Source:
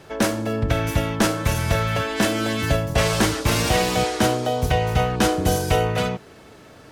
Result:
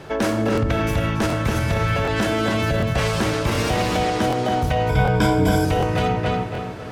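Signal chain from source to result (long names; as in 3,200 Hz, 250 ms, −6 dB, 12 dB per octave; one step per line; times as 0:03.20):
in parallel at −3 dB: downward compressor, threshold −26 dBFS, peak gain reduction 11.5 dB
on the sum: high-shelf EQ 4,600 Hz −8 dB
feedback echo with a low-pass in the loop 280 ms, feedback 40%, low-pass 4,100 Hz, level −5 dB
on a send at −14.5 dB: convolution reverb RT60 0.55 s, pre-delay 6 ms
on the sum: speech leveller within 4 dB 0.5 s
brickwall limiter −11.5 dBFS, peak gain reduction 7 dB
0:04.89–0:05.65: EQ curve with evenly spaced ripples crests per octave 1.7, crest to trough 15 dB
regular buffer underruns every 0.75 s, samples 1,024, repeat, from 0:00.53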